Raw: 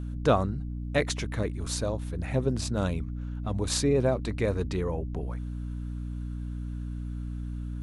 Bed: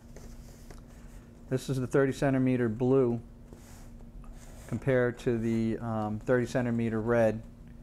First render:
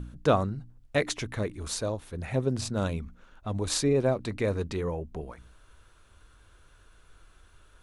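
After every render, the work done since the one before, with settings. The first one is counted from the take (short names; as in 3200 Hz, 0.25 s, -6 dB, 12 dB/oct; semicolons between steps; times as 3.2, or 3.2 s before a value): de-hum 60 Hz, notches 5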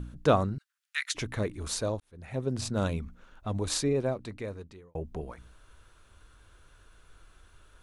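0.58–1.15 steep high-pass 1400 Hz; 2–2.71 fade in; 3.47–4.95 fade out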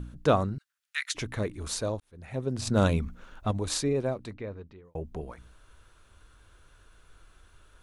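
2.67–3.51 gain +6 dB; 4.33–4.85 air absorption 230 m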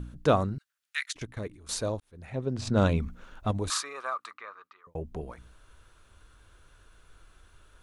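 1.06–1.69 level quantiser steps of 17 dB; 2.3–3 air absorption 69 m; 3.7–4.87 resonant high-pass 1200 Hz, resonance Q 12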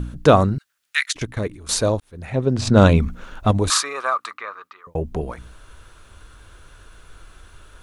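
gain +11.5 dB; limiter -1 dBFS, peak gain reduction 2.5 dB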